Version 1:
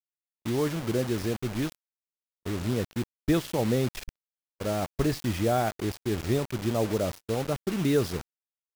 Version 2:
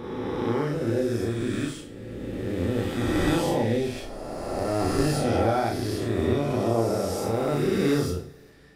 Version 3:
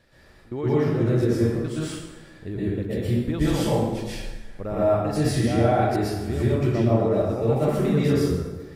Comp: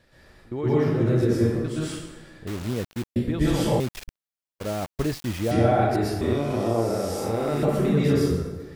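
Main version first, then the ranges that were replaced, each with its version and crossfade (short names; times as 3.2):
3
2.47–3.16 from 1
3.8–5.51 from 1
6.21–7.63 from 2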